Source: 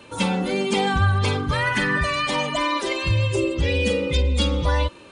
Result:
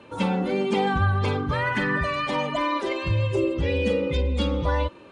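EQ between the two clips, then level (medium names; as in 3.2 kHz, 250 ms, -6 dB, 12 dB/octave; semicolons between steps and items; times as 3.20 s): low-pass 1.5 kHz 6 dB/octave; bass shelf 79 Hz -7.5 dB; 0.0 dB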